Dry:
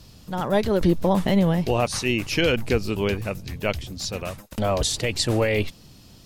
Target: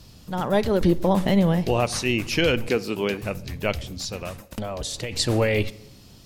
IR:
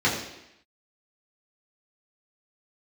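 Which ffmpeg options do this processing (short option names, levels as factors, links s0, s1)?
-filter_complex "[0:a]asettb=1/sr,asplit=3[s0][s1][s2];[s0]atrim=end=2.684[s3];[s1]atrim=start=2.68:end=3.23,asetpts=PTS-STARTPTS,afade=t=in:d=0.004:c=qsin,afade=t=out:st=0.546:d=0.004:c=qsin,highpass=190[s4];[s2]atrim=start=3.226[s5];[s3][s4]acrossfade=d=0.004:c1=hsin:c2=qsin[s6];[s6][s5]acrossfade=d=0.004:c1=qsin:c2=hsin,asplit=2[s7][s8];[1:a]atrim=start_sample=2205,adelay=39[s9];[s8][s9]afir=irnorm=-1:irlink=0,volume=0.0211[s10];[s7][s10]amix=inputs=2:normalize=0,asplit=3[s11][s12][s13];[s11]afade=t=out:st=3.97:d=0.02[s14];[s12]acompressor=threshold=0.0447:ratio=6,afade=t=in:st=3.97:d=0.02,afade=t=out:st=5.11:d=0.02[s15];[s13]afade=t=in:st=5.11:d=0.02[s16];[s14][s15][s16]amix=inputs=3:normalize=0"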